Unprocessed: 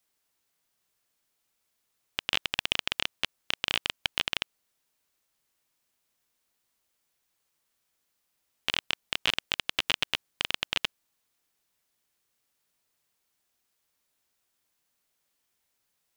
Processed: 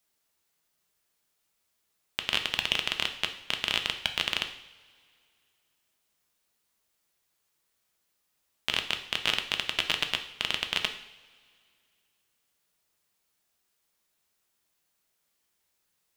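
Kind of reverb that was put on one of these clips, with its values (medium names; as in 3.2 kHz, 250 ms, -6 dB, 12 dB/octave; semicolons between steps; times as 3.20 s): two-slope reverb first 0.65 s, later 2.4 s, from -18 dB, DRR 5.5 dB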